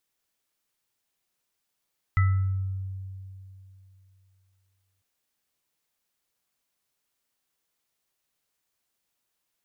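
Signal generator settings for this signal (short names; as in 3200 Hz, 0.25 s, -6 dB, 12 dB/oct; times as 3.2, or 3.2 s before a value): sine partials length 2.85 s, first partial 95.5 Hz, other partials 1310/1990 Hz, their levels -11.5/-11 dB, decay 2.94 s, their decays 0.73/0.48 s, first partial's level -17 dB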